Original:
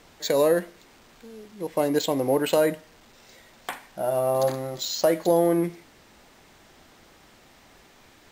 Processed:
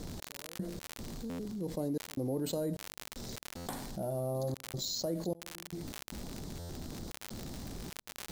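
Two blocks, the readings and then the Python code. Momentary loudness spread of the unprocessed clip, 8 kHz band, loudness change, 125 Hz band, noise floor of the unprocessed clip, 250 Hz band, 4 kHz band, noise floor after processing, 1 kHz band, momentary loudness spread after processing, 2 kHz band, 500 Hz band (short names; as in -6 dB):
16 LU, -6.5 dB, -15.5 dB, -3.0 dB, -55 dBFS, -9.5 dB, -8.0 dB, -56 dBFS, -16.5 dB, 10 LU, -12.5 dB, -16.0 dB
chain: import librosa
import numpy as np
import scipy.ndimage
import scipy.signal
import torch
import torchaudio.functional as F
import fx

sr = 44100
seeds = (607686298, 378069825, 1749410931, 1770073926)

y = fx.curve_eq(x, sr, hz=(180.0, 2600.0, 4100.0), db=(0, -28, -11))
y = fx.step_gate(y, sr, bpm=76, pattern='x..x.xxxxx.xx', floor_db=-60.0, edge_ms=4.5)
y = fx.dmg_crackle(y, sr, seeds[0], per_s=90.0, level_db=-50.0)
y = fx.buffer_glitch(y, sr, at_s=(1.29, 3.56, 6.59), block=512, repeats=8)
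y = fx.env_flatten(y, sr, amount_pct=70)
y = y * 10.0 ** (-6.0 / 20.0)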